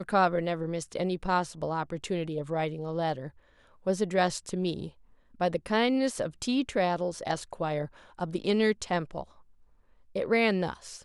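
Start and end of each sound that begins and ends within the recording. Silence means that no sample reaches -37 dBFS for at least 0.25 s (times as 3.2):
3.86–4.88
5.41–7.86
8.19–9.23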